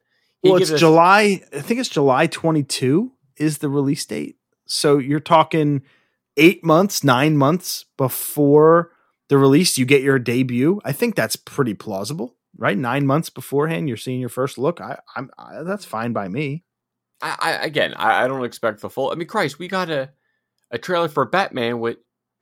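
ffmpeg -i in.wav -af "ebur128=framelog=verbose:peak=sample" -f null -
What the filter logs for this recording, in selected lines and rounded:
Integrated loudness:
  I:         -18.5 LUFS
  Threshold: -29.1 LUFS
Loudness range:
  LRA:         7.8 LU
  Threshold: -39.4 LUFS
  LRA low:   -24.1 LUFS
  LRA high:  -16.3 LUFS
Sample peak:
  Peak:       -1.2 dBFS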